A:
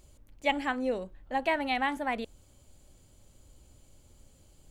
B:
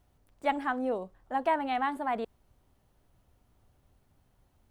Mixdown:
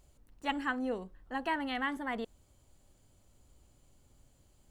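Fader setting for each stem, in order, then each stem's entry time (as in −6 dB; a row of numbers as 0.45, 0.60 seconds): −7.5, −4.0 decibels; 0.00, 0.00 seconds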